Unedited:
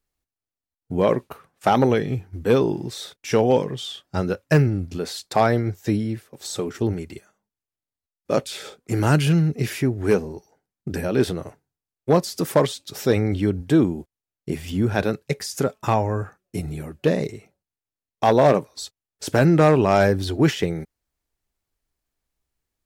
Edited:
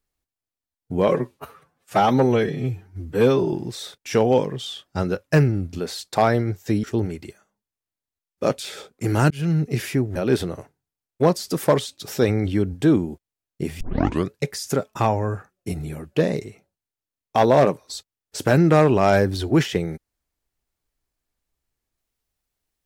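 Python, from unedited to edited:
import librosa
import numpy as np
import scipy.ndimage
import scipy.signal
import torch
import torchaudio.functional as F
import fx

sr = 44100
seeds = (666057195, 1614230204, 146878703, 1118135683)

y = fx.edit(x, sr, fx.stretch_span(start_s=1.08, length_s=1.63, factor=1.5),
    fx.cut(start_s=6.02, length_s=0.69),
    fx.fade_in_span(start_s=9.18, length_s=0.27),
    fx.cut(start_s=10.03, length_s=1.0),
    fx.tape_start(start_s=14.68, length_s=0.5), tone=tone)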